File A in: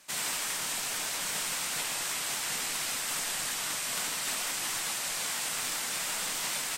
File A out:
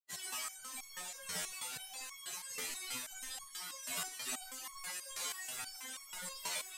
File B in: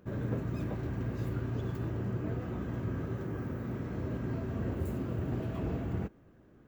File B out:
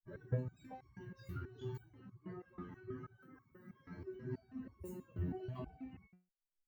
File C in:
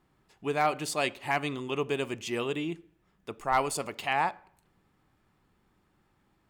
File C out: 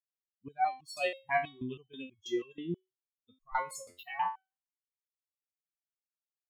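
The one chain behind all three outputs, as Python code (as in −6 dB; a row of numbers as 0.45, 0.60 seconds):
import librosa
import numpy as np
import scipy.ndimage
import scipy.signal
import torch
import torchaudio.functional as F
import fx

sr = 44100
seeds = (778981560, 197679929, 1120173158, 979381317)

y = fx.bin_expand(x, sr, power=3.0)
y = fx.resonator_held(y, sr, hz=6.2, low_hz=88.0, high_hz=1100.0)
y = y * 10.0 ** (11.5 / 20.0)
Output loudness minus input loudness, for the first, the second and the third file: −11.0, −11.0, −5.5 LU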